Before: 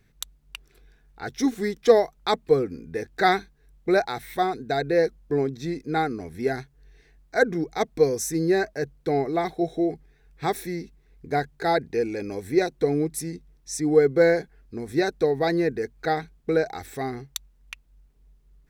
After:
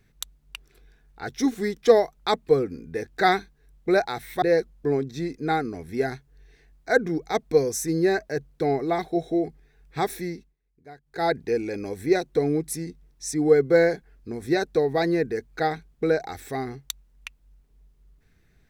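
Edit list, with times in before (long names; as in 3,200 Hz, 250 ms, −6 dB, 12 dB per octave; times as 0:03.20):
0:04.42–0:04.88: remove
0:10.73–0:11.77: duck −20.5 dB, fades 0.29 s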